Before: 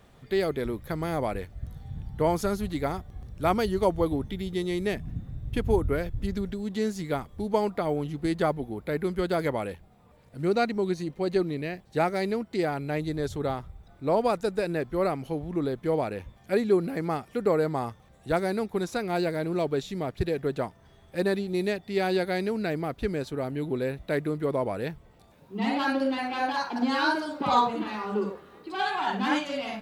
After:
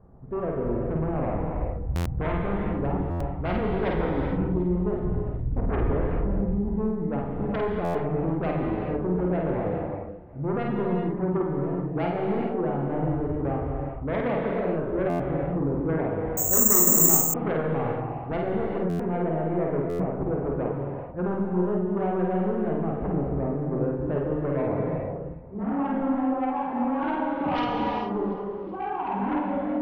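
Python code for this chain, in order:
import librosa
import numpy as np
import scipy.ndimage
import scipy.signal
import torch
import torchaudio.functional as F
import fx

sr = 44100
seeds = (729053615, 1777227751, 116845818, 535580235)

p1 = scipy.signal.sosfilt(scipy.signal.butter(4, 1100.0, 'lowpass', fs=sr, output='sos'), x)
p2 = fx.low_shelf(p1, sr, hz=200.0, db=8.0)
p3 = fx.fold_sine(p2, sr, drive_db=14, ceiling_db=-7.0)
p4 = p2 + (p3 * librosa.db_to_amplitude(-6.0))
p5 = fx.doubler(p4, sr, ms=50.0, db=-3.0)
p6 = p5 + fx.echo_feedback(p5, sr, ms=370, feedback_pct=59, wet_db=-22, dry=0)
p7 = fx.rev_gated(p6, sr, seeds[0], gate_ms=460, shape='flat', drr_db=0.0)
p8 = fx.resample_bad(p7, sr, factor=6, down='filtered', up='zero_stuff', at=(16.37, 17.34))
p9 = fx.buffer_glitch(p8, sr, at_s=(1.95, 3.1, 7.84, 15.09, 18.89, 19.89), block=512, repeats=8)
y = p9 * librosa.db_to_amplitude(-16.0)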